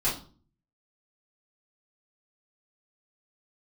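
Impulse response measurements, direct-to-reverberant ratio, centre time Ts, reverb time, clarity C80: −9.0 dB, 30 ms, 0.40 s, 14.0 dB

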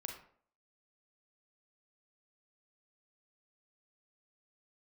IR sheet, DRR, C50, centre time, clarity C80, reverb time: 2.5 dB, 5.5 dB, 26 ms, 10.0 dB, 0.55 s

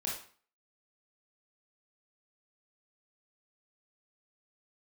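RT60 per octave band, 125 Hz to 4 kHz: 0.45, 0.45, 0.40, 0.45, 0.45, 0.40 seconds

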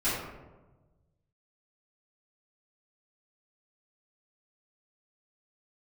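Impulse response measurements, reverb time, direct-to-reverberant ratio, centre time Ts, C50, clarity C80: 1.2 s, −14.5 dB, 73 ms, 0.0 dB, 3.0 dB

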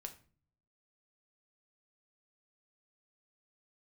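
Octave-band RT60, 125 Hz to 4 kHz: 0.95, 0.80, 0.45, 0.40, 0.35, 0.30 seconds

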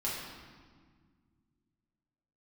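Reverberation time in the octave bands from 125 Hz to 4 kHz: 3.0, 2.8, 1.8, 1.6, 1.4, 1.2 seconds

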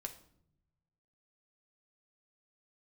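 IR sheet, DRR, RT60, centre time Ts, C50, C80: 4.0 dB, 0.70 s, 9 ms, 12.0 dB, 16.0 dB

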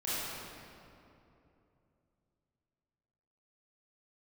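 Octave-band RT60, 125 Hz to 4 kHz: 3.8, 3.4, 3.1, 2.6, 2.1, 1.7 seconds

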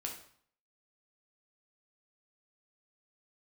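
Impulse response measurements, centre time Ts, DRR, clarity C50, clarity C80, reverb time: 24 ms, 0.0 dB, 6.5 dB, 10.5 dB, 0.55 s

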